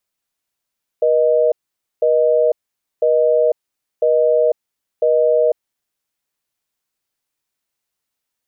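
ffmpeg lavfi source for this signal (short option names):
-f lavfi -i "aevalsrc='0.2*(sin(2*PI*480*t)+sin(2*PI*620*t))*clip(min(mod(t,1),0.5-mod(t,1))/0.005,0,1)':d=4.81:s=44100"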